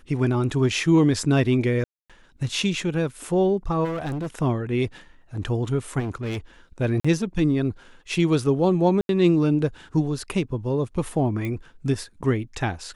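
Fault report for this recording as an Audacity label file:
1.840000	2.100000	drop-out 256 ms
3.840000	4.270000	clipping −25 dBFS
5.990000	6.380000	clipping −25 dBFS
7.000000	7.040000	drop-out 45 ms
9.010000	9.090000	drop-out 82 ms
11.450000	11.450000	click −18 dBFS

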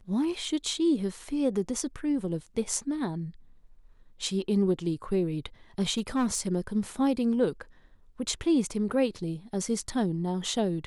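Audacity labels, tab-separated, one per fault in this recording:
5.980000	6.400000	clipping −21.5 dBFS

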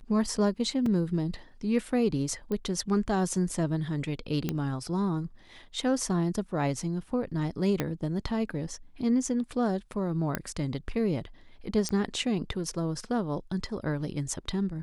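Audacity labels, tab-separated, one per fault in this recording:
0.860000	0.860000	drop-out 3.1 ms
2.520000	2.520000	click −21 dBFS
4.490000	4.490000	click −15 dBFS
7.800000	7.800000	click −13 dBFS
10.350000	10.350000	click −13 dBFS
11.890000	11.890000	click −17 dBFS

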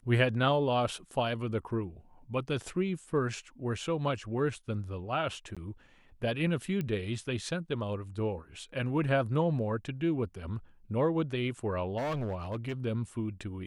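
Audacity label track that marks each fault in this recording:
5.550000	5.570000	drop-out 16 ms
6.810000	6.810000	click −22 dBFS
11.970000	12.730000	clipping −30 dBFS

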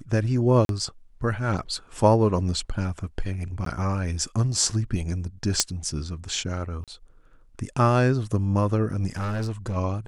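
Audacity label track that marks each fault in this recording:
0.650000	0.690000	drop-out 42 ms
3.650000	3.660000	drop-out 13 ms
5.600000	5.600000	click −3 dBFS
6.840000	6.880000	drop-out 37 ms
9.160000	9.770000	clipping −24 dBFS

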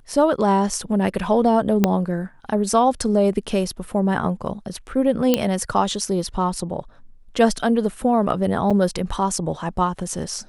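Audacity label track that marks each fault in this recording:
1.840000	1.840000	click −3 dBFS
5.340000	5.340000	click −3 dBFS
8.700000	8.710000	drop-out 6.2 ms

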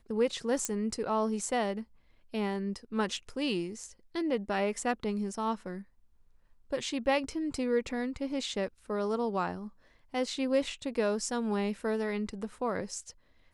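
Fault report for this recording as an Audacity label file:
0.650000	0.650000	click −15 dBFS

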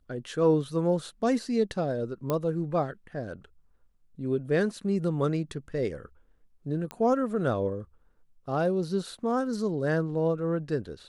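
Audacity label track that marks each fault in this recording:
2.300000	2.300000	click −15 dBFS
6.910000	6.910000	click −20 dBFS

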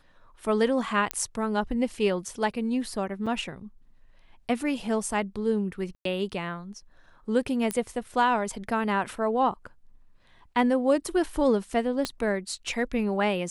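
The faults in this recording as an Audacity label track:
1.110000	1.110000	click −10 dBFS
3.260000	3.270000	drop-out 5.7 ms
5.950000	6.050000	drop-out 103 ms
7.710000	7.710000	click −14 dBFS
12.050000	12.050000	click −13 dBFS

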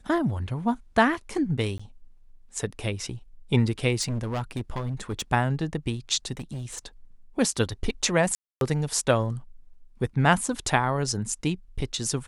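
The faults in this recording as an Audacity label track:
1.780000	1.790000	drop-out 15 ms
4.010000	5.220000	clipping −25 dBFS
6.370000	6.790000	clipping −30 dBFS
8.350000	8.610000	drop-out 262 ms

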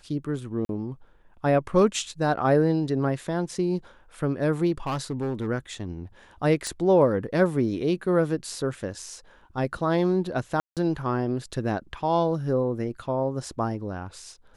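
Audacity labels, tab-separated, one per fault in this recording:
0.650000	0.690000	drop-out 42 ms
4.860000	5.470000	clipping −24 dBFS
6.670000	6.670000	click −18 dBFS
10.600000	10.770000	drop-out 167 ms

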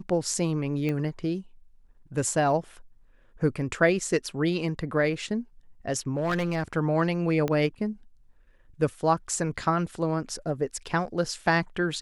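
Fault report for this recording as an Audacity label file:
0.890000	0.890000	click −18 dBFS
6.160000	6.770000	clipping −22.5 dBFS
7.480000	7.480000	click −15 dBFS
10.300000	10.300000	drop-out 2.6 ms

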